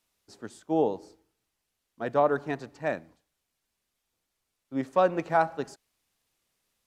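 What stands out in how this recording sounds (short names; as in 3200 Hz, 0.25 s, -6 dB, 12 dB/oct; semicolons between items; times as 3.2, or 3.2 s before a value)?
noise floor -82 dBFS; spectral tilt -2.0 dB/oct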